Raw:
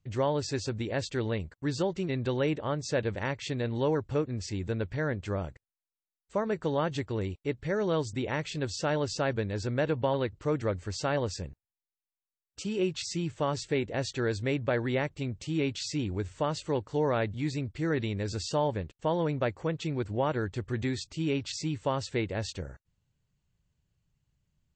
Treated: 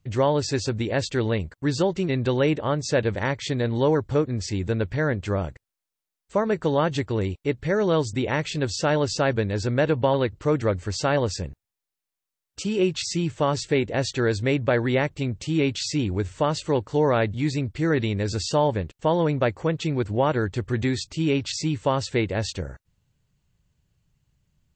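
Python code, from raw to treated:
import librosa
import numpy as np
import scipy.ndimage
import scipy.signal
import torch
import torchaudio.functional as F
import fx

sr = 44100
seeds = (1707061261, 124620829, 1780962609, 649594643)

y = fx.notch(x, sr, hz=2700.0, q=11.0, at=(3.15, 4.48))
y = y * librosa.db_to_amplitude(7.0)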